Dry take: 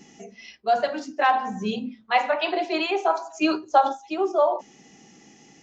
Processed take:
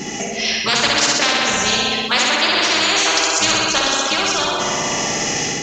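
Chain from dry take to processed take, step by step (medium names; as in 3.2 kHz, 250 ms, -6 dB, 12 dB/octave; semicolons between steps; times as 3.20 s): level rider gain up to 9.5 dB; on a send: flutter echo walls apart 10.9 m, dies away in 0.97 s; on the sum: spectrum-flattening compressor 10:1; trim -1.5 dB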